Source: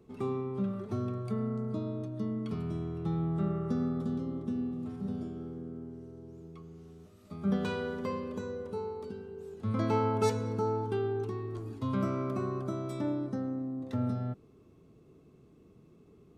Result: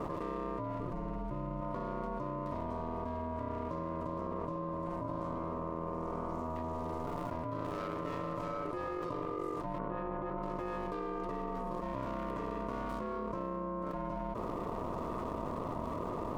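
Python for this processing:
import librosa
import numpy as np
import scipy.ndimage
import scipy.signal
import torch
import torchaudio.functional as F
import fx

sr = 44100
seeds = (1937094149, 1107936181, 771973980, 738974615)

y = scipy.signal.medfilt(x, 41)
y = y * np.sin(2.0 * np.pi * 440.0 * np.arange(len(y)) / sr)
y = fx.highpass(y, sr, hz=95.0, slope=12, at=(8.2, 8.65))
y = y * np.sin(2.0 * np.pi * 360.0 * np.arange(len(y)) / sr)
y = fx.low_shelf(y, sr, hz=290.0, db=10.0, at=(0.79, 1.61))
y = fx.lowpass(y, sr, hz=1600.0, slope=12, at=(9.78, 10.43))
y = fx.env_flatten(y, sr, amount_pct=100)
y = y * librosa.db_to_amplitude(-7.0)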